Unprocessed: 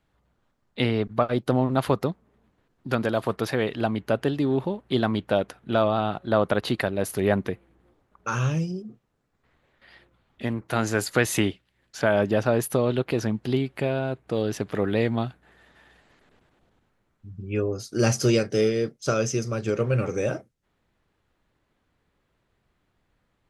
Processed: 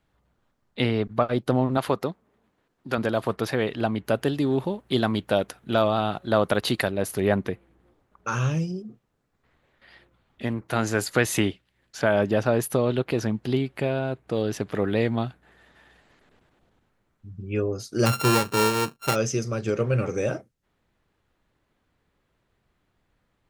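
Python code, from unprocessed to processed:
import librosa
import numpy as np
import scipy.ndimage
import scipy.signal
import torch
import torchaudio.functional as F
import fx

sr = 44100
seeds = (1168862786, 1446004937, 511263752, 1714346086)

y = fx.low_shelf(x, sr, hz=150.0, db=-11.0, at=(1.77, 2.98))
y = fx.high_shelf(y, sr, hz=fx.line((4.04, 6200.0), (6.91, 3800.0)), db=9.5, at=(4.04, 6.91), fade=0.02)
y = fx.sample_sort(y, sr, block=32, at=(18.05, 19.14), fade=0.02)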